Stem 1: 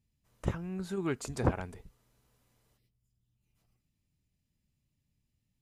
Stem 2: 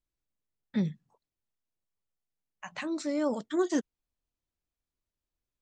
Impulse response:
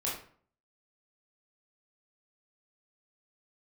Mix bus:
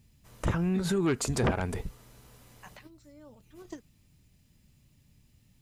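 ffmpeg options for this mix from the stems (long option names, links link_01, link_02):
-filter_complex "[0:a]aeval=exprs='0.224*sin(PI/2*3.55*val(0)/0.224)':channel_layout=same,volume=1.5dB,asplit=2[link_01][link_02];[1:a]volume=-0.5dB[link_03];[link_02]apad=whole_len=247407[link_04];[link_03][link_04]sidechaingate=range=-23dB:threshold=-54dB:ratio=16:detection=peak[link_05];[link_01][link_05]amix=inputs=2:normalize=0,alimiter=limit=-20.5dB:level=0:latency=1:release=189"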